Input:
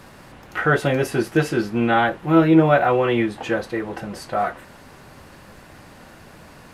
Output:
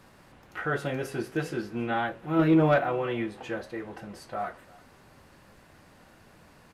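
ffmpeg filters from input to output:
ffmpeg -i in.wav -filter_complex "[0:a]asettb=1/sr,asplit=3[link_01][link_02][link_03];[link_01]atrim=end=2.394[link_04];[link_02]atrim=start=2.39:end=2.79,asetpts=PTS-STARTPTS,afade=type=in:duration=0.004:curve=qsin,afade=type=out:start_time=0.396:duration=0.004:curve=qsin,acontrast=51[link_05];[link_03]atrim=start=2.786[link_06];[link_04][link_05]acrossfade=duration=0.004:curve1=hsin:curve2=qsin[link_07];[link_07][link_06]acrossfade=duration=0.004:curve1=qsin:curve2=hsin,flanger=delay=9.6:depth=8.8:regen=-78:speed=0.48:shape=sinusoidal,asplit=2[link_08][link_09];[link_09]aecho=0:1:341:0.0631[link_10];[link_08][link_10]amix=inputs=2:normalize=0,volume=-6.5dB" out.wav

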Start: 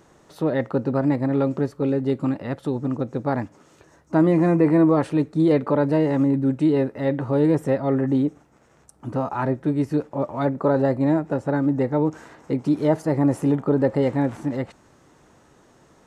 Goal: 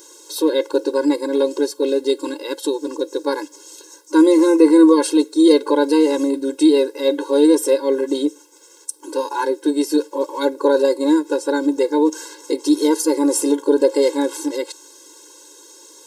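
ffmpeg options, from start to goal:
ffmpeg -i in.wav -af "aexciter=amount=5.1:drive=7.4:freq=3200,afftfilt=real='re*eq(mod(floor(b*sr/1024/280),2),1)':imag='im*eq(mod(floor(b*sr/1024/280),2),1)':win_size=1024:overlap=0.75,volume=7dB" out.wav

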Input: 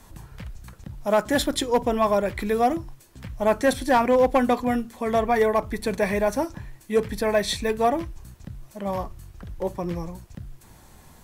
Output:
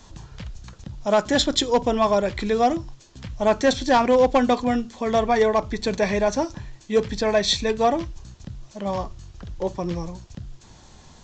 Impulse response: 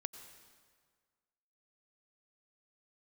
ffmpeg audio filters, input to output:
-filter_complex "[0:a]asplit=2[link_01][link_02];[link_02]highshelf=frequency=2100:width_type=q:width=1.5:gain=13[link_03];[1:a]atrim=start_sample=2205,atrim=end_sample=3969[link_04];[link_03][link_04]afir=irnorm=-1:irlink=0,volume=-10.5dB[link_05];[link_01][link_05]amix=inputs=2:normalize=0,aresample=16000,aresample=44100"

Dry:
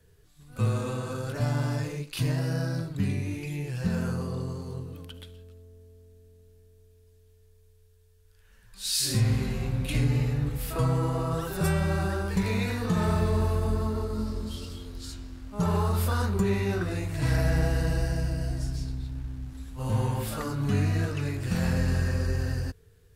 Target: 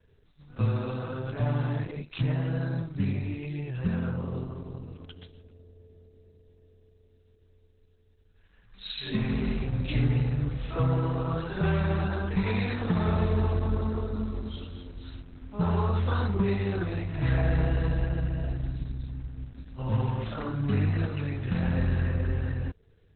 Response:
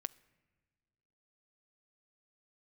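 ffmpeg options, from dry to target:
-filter_complex "[0:a]asettb=1/sr,asplit=3[link_01][link_02][link_03];[link_01]atrim=end=8.894[link_04];[link_02]atrim=start=8.89:end=9.64,asetpts=PTS-STARTPTS,afade=type=in:duration=0.004:curve=qsin,afade=type=out:start_time=0.746:duration=0.004:curve=qsin,aecho=1:1:4.7:0.72,atrim=end_sample=33075[link_05];[link_03]atrim=start=9.636[link_06];[link_04][link_05]acrossfade=duration=0.004:curve1=hsin:curve2=qsin[link_07];[link_07][link_06]acrossfade=duration=0.004:curve1=qsin:curve2=hsin" -ar 48000 -c:a libopus -b:a 8k

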